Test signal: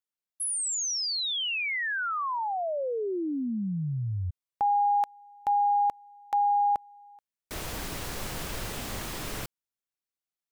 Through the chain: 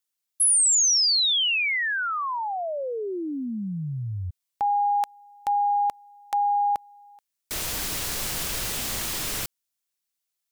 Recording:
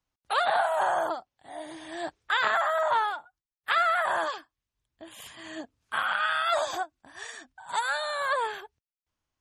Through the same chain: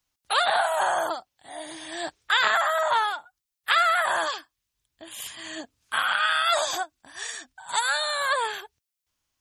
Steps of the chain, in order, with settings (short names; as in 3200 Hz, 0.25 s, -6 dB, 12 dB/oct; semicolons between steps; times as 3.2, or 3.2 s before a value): high shelf 2300 Hz +11.5 dB